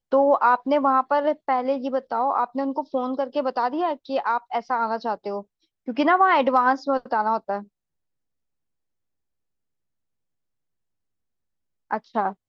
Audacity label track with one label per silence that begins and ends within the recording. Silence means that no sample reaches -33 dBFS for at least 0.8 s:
7.620000	11.910000	silence